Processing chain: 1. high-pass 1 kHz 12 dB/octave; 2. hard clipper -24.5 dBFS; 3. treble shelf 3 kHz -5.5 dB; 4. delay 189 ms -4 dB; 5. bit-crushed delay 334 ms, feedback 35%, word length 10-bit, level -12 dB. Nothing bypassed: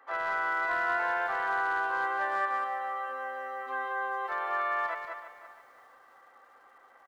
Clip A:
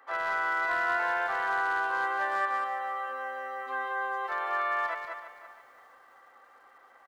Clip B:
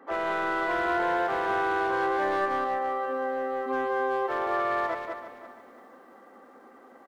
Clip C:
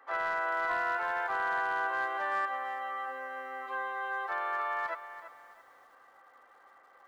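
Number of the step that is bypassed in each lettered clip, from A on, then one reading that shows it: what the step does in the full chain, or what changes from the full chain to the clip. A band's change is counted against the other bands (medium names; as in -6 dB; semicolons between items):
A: 3, 4 kHz band +2.5 dB; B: 1, 250 Hz band +13.0 dB; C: 4, 4 kHz band +1.5 dB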